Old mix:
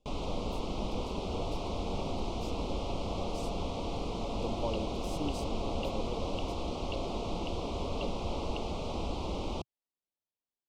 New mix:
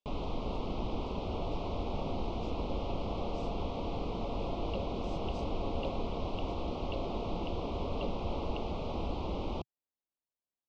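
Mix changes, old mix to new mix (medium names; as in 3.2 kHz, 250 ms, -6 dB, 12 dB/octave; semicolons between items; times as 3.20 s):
speech: add band-pass filter 7.1 kHz, Q 0.9; master: add distance through air 180 m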